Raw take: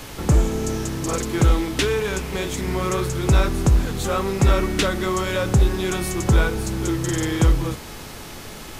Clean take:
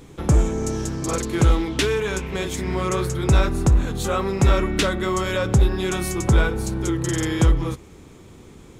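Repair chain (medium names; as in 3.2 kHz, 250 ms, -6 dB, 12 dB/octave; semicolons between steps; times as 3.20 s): de-hum 427.2 Hz, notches 15; noise print and reduce 8 dB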